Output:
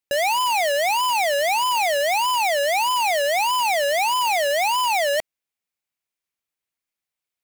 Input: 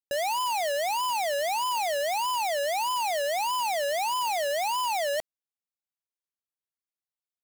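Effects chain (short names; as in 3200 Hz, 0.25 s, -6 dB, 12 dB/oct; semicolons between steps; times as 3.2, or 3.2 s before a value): bell 2300 Hz +6 dB 0.54 oct; gain +6.5 dB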